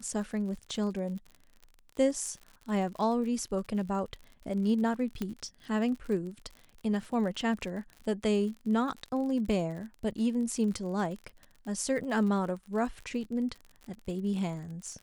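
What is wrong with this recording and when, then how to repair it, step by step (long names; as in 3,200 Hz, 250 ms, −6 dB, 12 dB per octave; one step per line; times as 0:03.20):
surface crackle 53 per second −39 dBFS
0:05.22: click −20 dBFS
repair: click removal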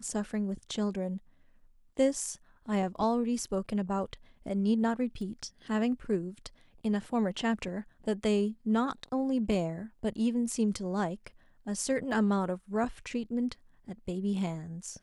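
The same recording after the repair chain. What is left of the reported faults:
0:05.22: click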